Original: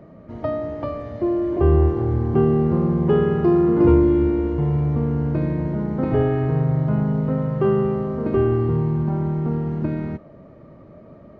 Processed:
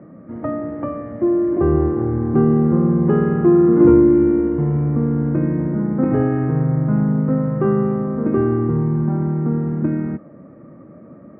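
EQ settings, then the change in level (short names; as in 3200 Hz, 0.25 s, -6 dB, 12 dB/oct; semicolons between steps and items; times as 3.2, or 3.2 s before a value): speaker cabinet 310–2100 Hz, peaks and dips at 410 Hz -10 dB, 650 Hz -10 dB, 930 Hz -7 dB; tilt -3.5 dB/oct; +5.5 dB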